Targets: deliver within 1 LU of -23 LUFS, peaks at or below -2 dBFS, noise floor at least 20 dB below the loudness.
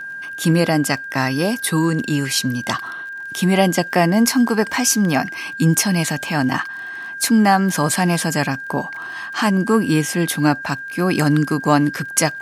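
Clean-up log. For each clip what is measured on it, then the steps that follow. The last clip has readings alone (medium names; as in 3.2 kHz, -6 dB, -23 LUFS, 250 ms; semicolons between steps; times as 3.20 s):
tick rate 29 per s; steady tone 1.6 kHz; tone level -28 dBFS; loudness -18.5 LUFS; peak level -1.5 dBFS; loudness target -23.0 LUFS
-> de-click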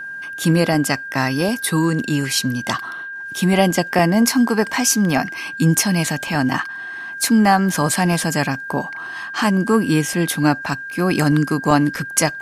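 tick rate 0.32 per s; steady tone 1.6 kHz; tone level -28 dBFS
-> band-stop 1.6 kHz, Q 30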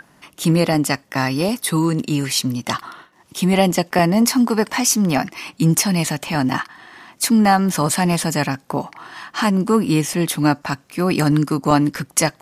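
steady tone not found; loudness -18.5 LUFS; peak level -1.5 dBFS; loudness target -23.0 LUFS
-> trim -4.5 dB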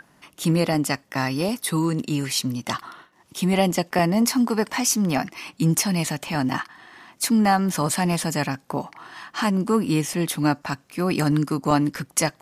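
loudness -23.0 LUFS; peak level -6.0 dBFS; noise floor -59 dBFS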